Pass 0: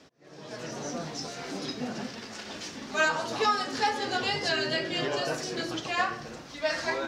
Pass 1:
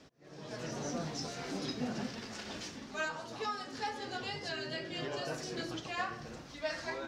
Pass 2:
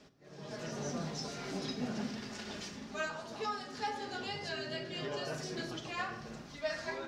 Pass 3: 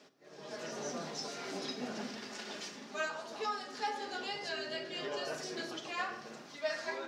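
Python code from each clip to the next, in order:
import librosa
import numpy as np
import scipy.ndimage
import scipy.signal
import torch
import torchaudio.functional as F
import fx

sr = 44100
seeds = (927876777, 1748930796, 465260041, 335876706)

y1 = fx.rider(x, sr, range_db=5, speed_s=0.5)
y1 = fx.low_shelf(y1, sr, hz=150.0, db=8.0)
y1 = y1 * librosa.db_to_amplitude(-9.0)
y2 = fx.room_shoebox(y1, sr, seeds[0], volume_m3=2800.0, walls='furnished', distance_m=1.3)
y2 = y2 * librosa.db_to_amplitude(-1.5)
y3 = scipy.signal.sosfilt(scipy.signal.butter(2, 300.0, 'highpass', fs=sr, output='sos'), y2)
y3 = y3 * librosa.db_to_amplitude(1.0)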